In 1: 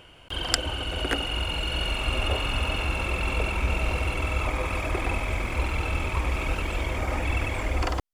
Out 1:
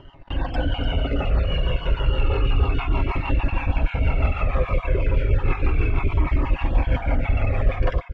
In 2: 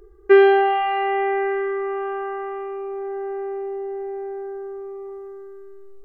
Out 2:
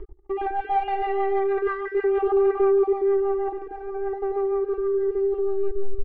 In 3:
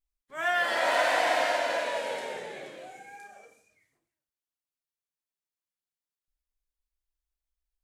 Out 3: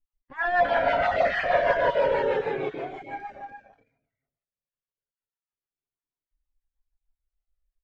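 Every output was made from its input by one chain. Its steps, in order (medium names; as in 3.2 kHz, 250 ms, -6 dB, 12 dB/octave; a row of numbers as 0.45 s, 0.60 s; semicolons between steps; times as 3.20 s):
random holes in the spectrogram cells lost 23%; comb 7.3 ms, depth 39%; reverse; compression 8:1, threshold -28 dBFS; reverse; waveshaping leveller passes 2; rotary cabinet horn 6.3 Hz; tape spacing loss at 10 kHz 44 dB; on a send: delay 296 ms -10.5 dB; on the sum: Shepard-style flanger falling 0.32 Hz; normalise loudness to -24 LUFS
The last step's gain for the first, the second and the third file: +11.0 dB, +13.5 dB, +15.0 dB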